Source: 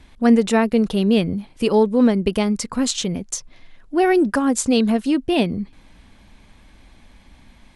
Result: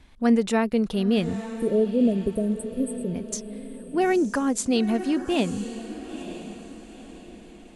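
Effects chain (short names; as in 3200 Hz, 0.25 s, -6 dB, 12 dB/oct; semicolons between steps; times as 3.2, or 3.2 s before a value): spectral delete 1.46–3.13, 710–8000 Hz; diffused feedback echo 0.929 s, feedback 41%, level -12 dB; gain -5.5 dB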